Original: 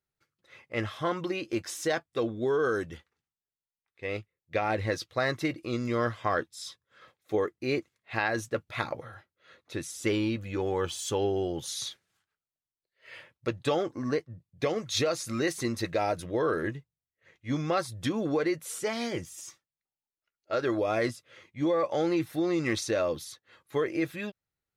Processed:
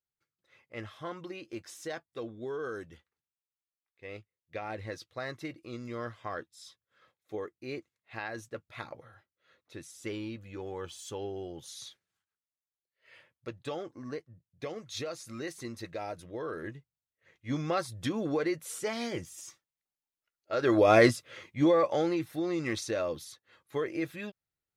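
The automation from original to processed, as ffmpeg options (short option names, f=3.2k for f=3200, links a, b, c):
-af "volume=8.5dB,afade=t=in:st=16.5:d=1:silence=0.421697,afade=t=in:st=20.55:d=0.4:silence=0.281838,afade=t=out:st=20.95:d=1.23:silence=0.237137"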